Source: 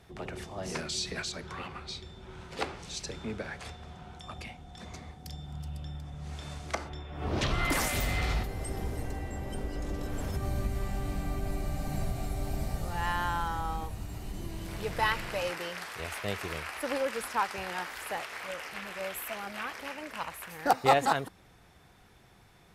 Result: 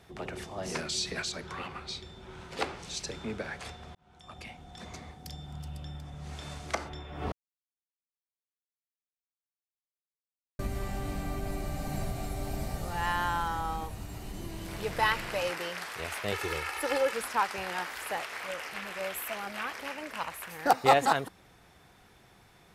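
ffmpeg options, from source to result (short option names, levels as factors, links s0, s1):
-filter_complex "[0:a]asettb=1/sr,asplit=3[s0][s1][s2];[s0]atrim=end=16.324[s3];[s1]atrim=start=16.32:end=17.13,asetpts=PTS-STARTPTS,afade=t=in:d=0.004:c=qsin,afade=t=out:st=0.806:d=0.004:c=qsin,aecho=1:1:2.3:0.77,atrim=end_sample=35721[s4];[s2]atrim=start=17.126[s5];[s3][s4]acrossfade=d=0.004:c1=hsin:c2=qsin[s6];[s6][s5]acrossfade=d=0.004:c1=qsin:c2=hsin,asplit=4[s7][s8][s9][s10];[s7]atrim=end=3.95,asetpts=PTS-STARTPTS,afade=t=out:st=3.946:d=0.004:c=hsin[s11];[s8]atrim=start=3.95:end=7.32,asetpts=PTS-STARTPTS,afade=t=in:d=0.69,afade=t=out:st=3.366:d=0.004:c=hsin[s12];[s9]atrim=start=7.32:end=10.59,asetpts=PTS-STARTPTS,volume=0[s13];[s10]atrim=start=10.59,asetpts=PTS-STARTPTS,afade=t=in:d=0.004:c=hsin[s14];[s11][s12][s13][s14]concat=n=4:v=0:a=1,lowshelf=f=140:g=-5,volume=1.19"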